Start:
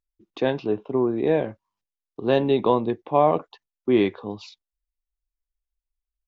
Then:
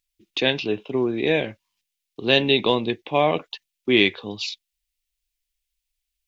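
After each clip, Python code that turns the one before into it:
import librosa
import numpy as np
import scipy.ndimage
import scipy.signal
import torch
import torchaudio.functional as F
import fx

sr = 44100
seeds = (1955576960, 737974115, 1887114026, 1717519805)

y = fx.high_shelf_res(x, sr, hz=1700.0, db=13.0, q=1.5)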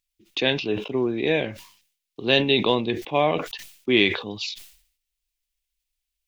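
y = fx.sustainer(x, sr, db_per_s=100.0)
y = y * 10.0 ** (-1.5 / 20.0)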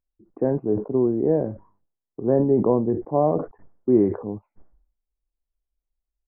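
y = scipy.ndimage.gaussian_filter1d(x, 10.0, mode='constant')
y = y * 10.0 ** (4.5 / 20.0)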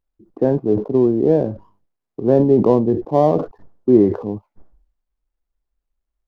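y = scipy.ndimage.median_filter(x, 15, mode='constant')
y = y * 10.0 ** (5.5 / 20.0)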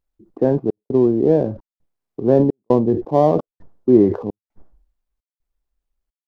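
y = fx.step_gate(x, sr, bpm=150, pattern='xxxxxxx..', floor_db=-60.0, edge_ms=4.5)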